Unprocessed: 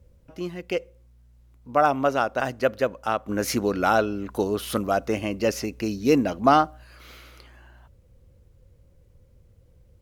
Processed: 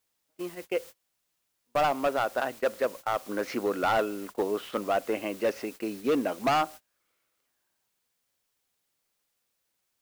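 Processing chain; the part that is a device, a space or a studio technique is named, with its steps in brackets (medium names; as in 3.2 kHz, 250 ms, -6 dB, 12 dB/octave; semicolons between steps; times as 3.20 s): aircraft radio (band-pass 330–2600 Hz; hard clipper -18.5 dBFS, distortion -9 dB; white noise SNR 19 dB; gate -39 dBFS, range -28 dB); trim -1.5 dB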